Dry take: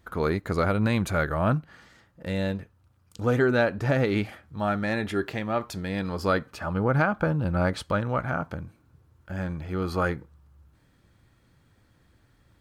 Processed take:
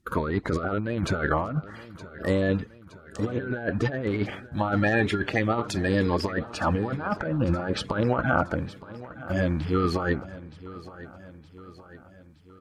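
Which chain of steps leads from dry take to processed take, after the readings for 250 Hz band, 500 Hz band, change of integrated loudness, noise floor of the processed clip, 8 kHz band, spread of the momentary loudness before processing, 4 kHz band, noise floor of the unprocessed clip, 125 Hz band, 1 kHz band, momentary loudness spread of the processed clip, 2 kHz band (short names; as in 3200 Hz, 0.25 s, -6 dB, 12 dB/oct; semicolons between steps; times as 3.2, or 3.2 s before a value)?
+1.0 dB, -0.5 dB, 0.0 dB, -51 dBFS, +1.0 dB, 9 LU, +2.0 dB, -63 dBFS, -0.5 dB, +0.5 dB, 18 LU, +1.0 dB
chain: bin magnitudes rounded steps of 30 dB; treble ducked by the level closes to 2900 Hz, closed at -19.5 dBFS; gate -52 dBFS, range -14 dB; negative-ratio compressor -28 dBFS, ratio -0.5; feedback echo 0.918 s, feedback 55%, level -17 dB; gain +4 dB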